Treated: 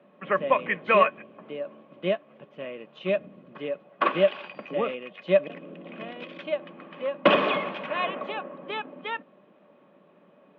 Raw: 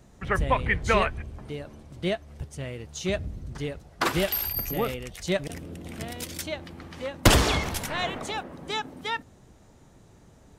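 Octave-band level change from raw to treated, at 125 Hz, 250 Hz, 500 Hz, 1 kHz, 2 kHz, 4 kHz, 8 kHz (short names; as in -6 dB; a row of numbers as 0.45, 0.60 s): -12.5 dB, -2.5 dB, +5.0 dB, +2.0 dB, -0.5 dB, -5.0 dB, under -40 dB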